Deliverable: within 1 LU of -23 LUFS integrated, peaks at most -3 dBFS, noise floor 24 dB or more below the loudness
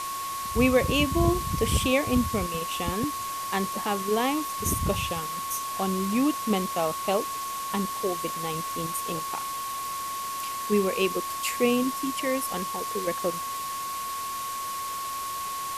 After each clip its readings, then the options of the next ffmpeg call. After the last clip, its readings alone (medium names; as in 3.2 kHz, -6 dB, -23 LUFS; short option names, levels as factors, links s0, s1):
steady tone 1.1 kHz; tone level -31 dBFS; noise floor -33 dBFS; noise floor target -52 dBFS; loudness -27.5 LUFS; peak level -9.5 dBFS; loudness target -23.0 LUFS
-> -af "bandreject=f=1100:w=30"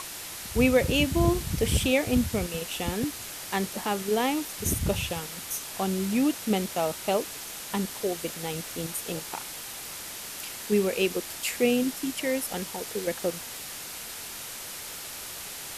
steady tone not found; noise floor -39 dBFS; noise floor target -53 dBFS
-> -af "afftdn=nr=14:nf=-39"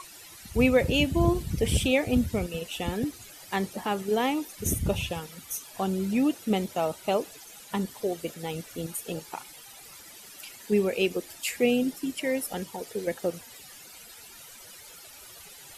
noise floor -48 dBFS; noise floor target -53 dBFS
-> -af "afftdn=nr=6:nf=-48"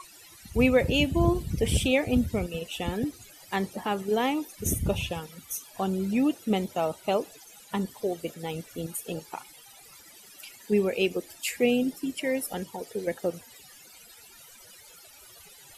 noise floor -52 dBFS; noise floor target -53 dBFS
-> -af "afftdn=nr=6:nf=-52"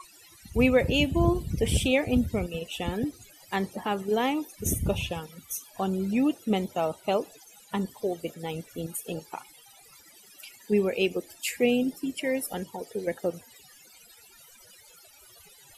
noise floor -55 dBFS; loudness -28.5 LUFS; peak level -9.5 dBFS; loudness target -23.0 LUFS
-> -af "volume=1.88"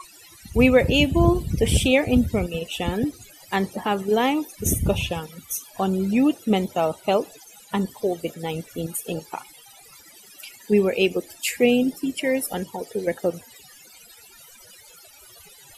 loudness -23.0 LUFS; peak level -4.0 dBFS; noise floor -49 dBFS